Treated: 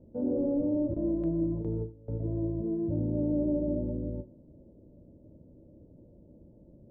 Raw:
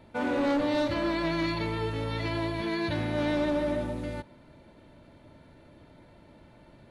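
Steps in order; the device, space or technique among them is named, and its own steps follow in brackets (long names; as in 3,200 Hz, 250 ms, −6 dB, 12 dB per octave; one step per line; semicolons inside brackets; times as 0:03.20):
under water (low-pass filter 450 Hz 24 dB per octave; parametric band 550 Hz +6.5 dB 0.31 octaves)
parametric band 2,100 Hz +2.5 dB 0.72 octaves
0:00.94–0:02.20: noise gate with hold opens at −24 dBFS
reverb whose tail is shaped and stops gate 140 ms falling, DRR 10 dB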